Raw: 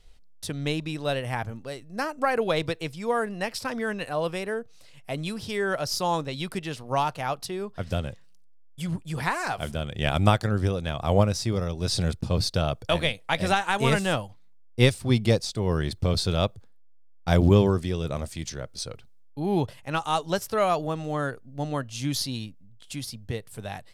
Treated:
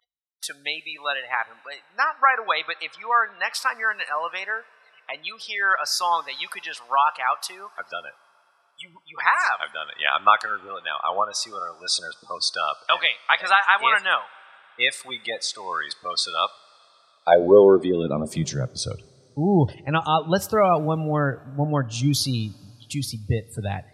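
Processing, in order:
gate on every frequency bin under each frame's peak −25 dB strong
high-pass filter sweep 1,200 Hz → 85 Hz, 0:16.77–0:18.91
coupled-rooms reverb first 0.38 s, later 4 s, from −17 dB, DRR 18 dB
level +5 dB

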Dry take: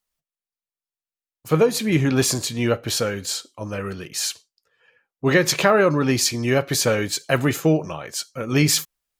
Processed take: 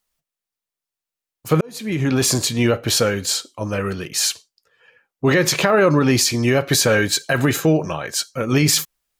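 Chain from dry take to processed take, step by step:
0:06.72–0:08.35: hollow resonant body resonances 1,600/3,900 Hz, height 10 dB
brickwall limiter −12 dBFS, peak gain reduction 10 dB
0:01.61–0:02.33: fade in
level +5.5 dB

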